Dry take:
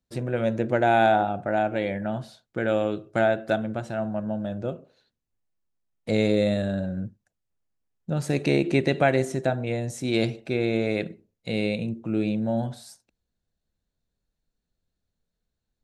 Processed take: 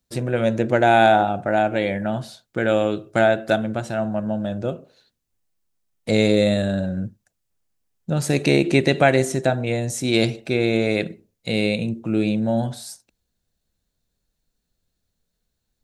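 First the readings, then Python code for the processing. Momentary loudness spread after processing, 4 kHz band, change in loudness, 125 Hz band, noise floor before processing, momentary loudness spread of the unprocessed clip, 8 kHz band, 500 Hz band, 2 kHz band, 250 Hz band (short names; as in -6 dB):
13 LU, +8.0 dB, +5.0 dB, +4.5 dB, -83 dBFS, 13 LU, +10.0 dB, +4.5 dB, +6.0 dB, +4.5 dB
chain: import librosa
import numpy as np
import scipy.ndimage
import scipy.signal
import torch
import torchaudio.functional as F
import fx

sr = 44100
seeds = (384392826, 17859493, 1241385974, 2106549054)

y = fx.high_shelf(x, sr, hz=3700.0, db=7.0)
y = F.gain(torch.from_numpy(y), 4.5).numpy()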